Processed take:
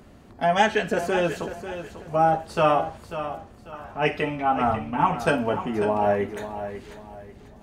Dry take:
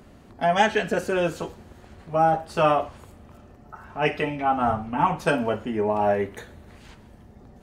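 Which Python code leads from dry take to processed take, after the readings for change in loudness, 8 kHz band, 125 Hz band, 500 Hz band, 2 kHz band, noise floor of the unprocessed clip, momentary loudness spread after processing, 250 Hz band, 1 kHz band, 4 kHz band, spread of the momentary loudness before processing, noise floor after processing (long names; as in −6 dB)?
−0.5 dB, can't be measured, +0.5 dB, +0.5 dB, +0.5 dB, −50 dBFS, 18 LU, +0.5 dB, +0.5 dB, +0.5 dB, 11 LU, −49 dBFS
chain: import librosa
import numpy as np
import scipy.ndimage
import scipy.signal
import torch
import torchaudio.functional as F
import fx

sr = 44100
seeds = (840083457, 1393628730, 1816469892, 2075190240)

y = fx.echo_feedback(x, sr, ms=543, feedback_pct=31, wet_db=-11)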